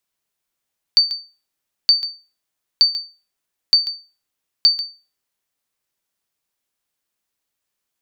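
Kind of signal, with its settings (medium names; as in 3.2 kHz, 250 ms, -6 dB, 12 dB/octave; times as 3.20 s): sonar ping 4.58 kHz, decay 0.32 s, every 0.92 s, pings 5, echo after 0.14 s, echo -13.5 dB -4.5 dBFS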